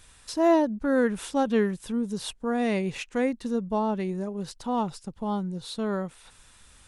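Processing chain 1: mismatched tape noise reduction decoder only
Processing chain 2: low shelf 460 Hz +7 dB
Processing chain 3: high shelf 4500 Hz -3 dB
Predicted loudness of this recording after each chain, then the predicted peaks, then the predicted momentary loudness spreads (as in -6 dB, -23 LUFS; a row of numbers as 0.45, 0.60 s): -27.5, -23.5, -27.5 LUFS; -12.5, -8.0, -12.5 dBFS; 10, 9, 10 LU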